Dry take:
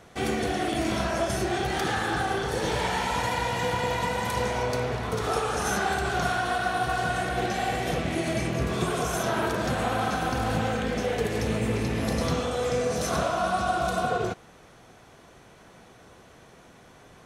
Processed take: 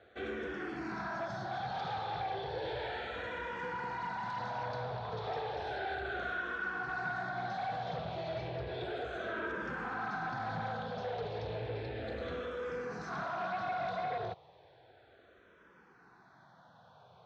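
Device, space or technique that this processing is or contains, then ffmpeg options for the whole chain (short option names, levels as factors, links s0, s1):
barber-pole phaser into a guitar amplifier: -filter_complex "[0:a]equalizer=f=250:t=o:w=1:g=-8,equalizer=f=1000:t=o:w=1:g=6,equalizer=f=2000:t=o:w=1:g=-9,equalizer=f=4000:t=o:w=1:g=6,equalizer=f=8000:t=o:w=1:g=4,asplit=2[s0][s1];[s1]afreqshift=-0.33[s2];[s0][s2]amix=inputs=2:normalize=1,asoftclip=type=tanh:threshold=0.0447,highpass=100,equalizer=f=1100:t=q:w=4:g=-6,equalizer=f=1600:t=q:w=4:g=7,equalizer=f=2900:t=q:w=4:g=-7,lowpass=f=3400:w=0.5412,lowpass=f=3400:w=1.3066,volume=0.596"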